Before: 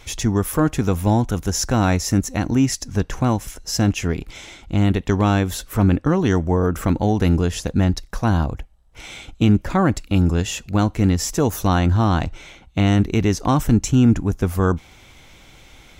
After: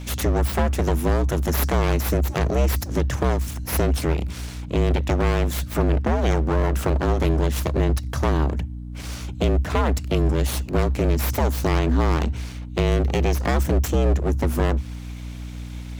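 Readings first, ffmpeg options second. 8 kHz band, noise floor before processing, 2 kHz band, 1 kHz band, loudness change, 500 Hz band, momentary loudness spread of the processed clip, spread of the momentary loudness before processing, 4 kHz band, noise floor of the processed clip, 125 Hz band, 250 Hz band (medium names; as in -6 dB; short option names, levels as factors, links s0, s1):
-6.0 dB, -48 dBFS, -1.0 dB, -3.0 dB, -2.5 dB, +0.5 dB, 10 LU, 8 LU, -3.0 dB, -34 dBFS, -3.0 dB, -7.0 dB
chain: -af "aeval=exprs='abs(val(0))':c=same,acompressor=threshold=0.126:ratio=6,afreqshift=66,aeval=exprs='val(0)+0.0178*(sin(2*PI*60*n/s)+sin(2*PI*2*60*n/s)/2+sin(2*PI*3*60*n/s)/3+sin(2*PI*4*60*n/s)/4+sin(2*PI*5*60*n/s)/5)':c=same,volume=1.41"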